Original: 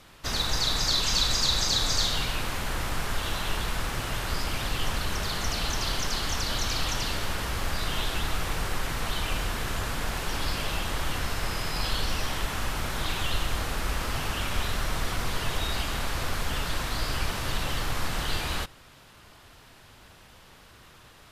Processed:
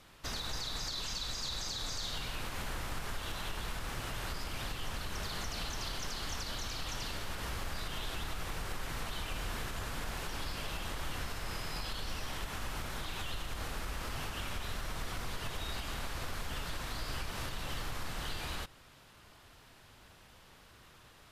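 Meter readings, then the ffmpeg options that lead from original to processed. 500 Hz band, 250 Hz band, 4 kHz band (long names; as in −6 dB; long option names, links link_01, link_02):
−9.5 dB, −9.5 dB, −11.5 dB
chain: -af "alimiter=limit=-22.5dB:level=0:latency=1:release=145,volume=-6dB"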